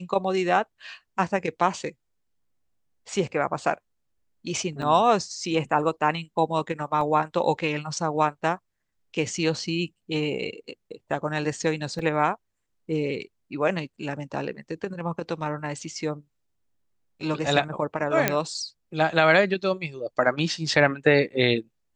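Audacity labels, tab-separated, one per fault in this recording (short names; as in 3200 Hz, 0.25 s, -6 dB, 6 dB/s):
4.820000	4.820000	gap 3.3 ms
7.010000	7.010000	gap 2.9 ms
11.990000	11.990000	gap 4.5 ms
18.280000	18.280000	pop -4 dBFS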